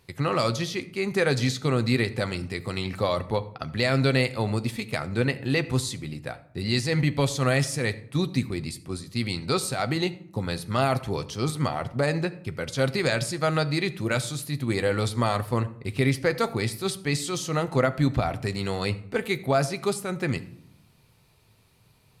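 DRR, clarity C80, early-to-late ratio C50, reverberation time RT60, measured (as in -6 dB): 10.5 dB, 19.0 dB, 16.5 dB, 0.70 s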